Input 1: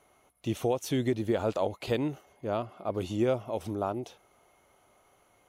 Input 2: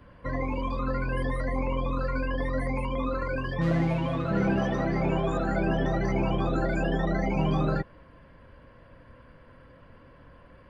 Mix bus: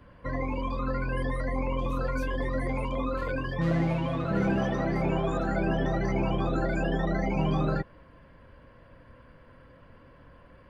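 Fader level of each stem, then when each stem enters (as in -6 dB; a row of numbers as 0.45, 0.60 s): -14.0, -1.0 dB; 1.35, 0.00 s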